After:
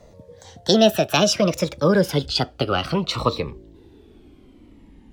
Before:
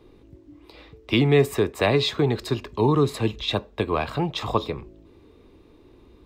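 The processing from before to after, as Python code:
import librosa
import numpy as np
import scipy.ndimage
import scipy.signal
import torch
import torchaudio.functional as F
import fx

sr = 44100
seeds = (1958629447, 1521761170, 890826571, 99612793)

y = fx.speed_glide(x, sr, from_pct=170, to_pct=74)
y = fx.dynamic_eq(y, sr, hz=2800.0, q=1.3, threshold_db=-41.0, ratio=4.0, max_db=4)
y = fx.notch_cascade(y, sr, direction='falling', hz=0.64)
y = y * 10.0 ** (4.0 / 20.0)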